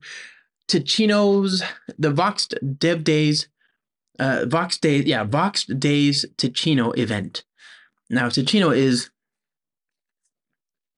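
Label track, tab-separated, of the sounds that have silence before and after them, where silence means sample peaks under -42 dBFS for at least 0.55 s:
4.190000	9.070000	sound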